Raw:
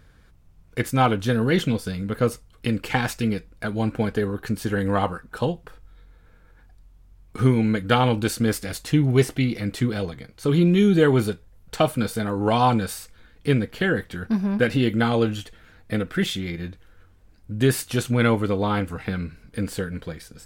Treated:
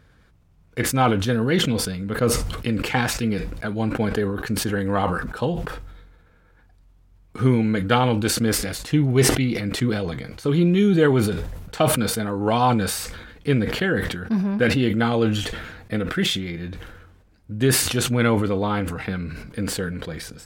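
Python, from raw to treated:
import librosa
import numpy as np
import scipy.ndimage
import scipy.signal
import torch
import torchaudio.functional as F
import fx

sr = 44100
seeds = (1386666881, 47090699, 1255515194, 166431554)

y = fx.highpass(x, sr, hz=58.0, slope=6)
y = fx.high_shelf(y, sr, hz=6400.0, db=-5.5)
y = fx.sustainer(y, sr, db_per_s=44.0)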